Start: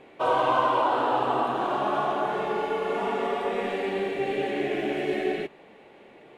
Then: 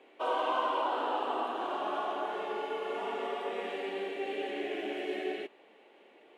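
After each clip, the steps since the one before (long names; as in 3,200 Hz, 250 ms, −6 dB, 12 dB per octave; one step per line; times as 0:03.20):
high-pass filter 260 Hz 24 dB per octave
parametric band 3,000 Hz +5 dB 0.34 octaves
level −8 dB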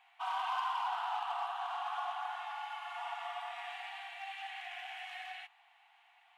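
in parallel at −8 dB: wave folding −29.5 dBFS
on the sum: linear-phase brick-wall high-pass 680 Hz
level −5 dB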